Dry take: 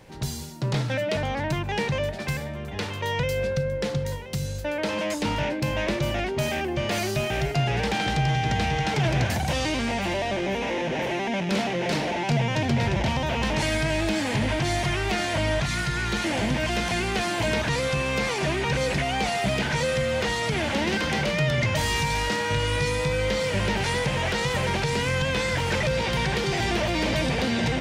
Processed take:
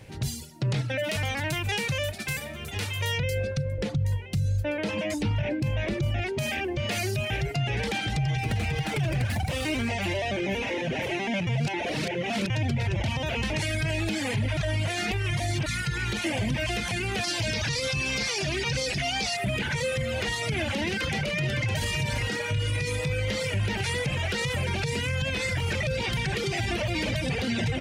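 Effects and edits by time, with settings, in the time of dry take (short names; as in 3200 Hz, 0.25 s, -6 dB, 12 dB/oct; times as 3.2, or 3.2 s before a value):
1.03–3.17 spectral whitening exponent 0.6
3.78–6.22 tilt -1.5 dB/oct
8.38–9.9 running maximum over 5 samples
11.47–12.5 reverse
14.57–15.66 reverse
17.24–19.37 bell 5100 Hz +13 dB 0.9 oct
20.84–21.71 echo throw 0.56 s, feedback 35%, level -4 dB
whole clip: reverb removal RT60 1.3 s; fifteen-band EQ 100 Hz +11 dB, 1000 Hz -5 dB, 2500 Hz +4 dB, 10000 Hz +4 dB; limiter -19.5 dBFS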